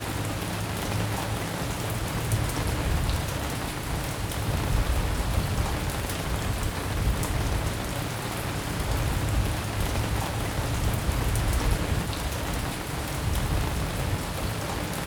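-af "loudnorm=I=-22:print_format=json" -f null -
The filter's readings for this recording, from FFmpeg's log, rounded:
"input_i" : "-28.9",
"input_tp" : "-10.0",
"input_lra" : "1.3",
"input_thresh" : "-38.9",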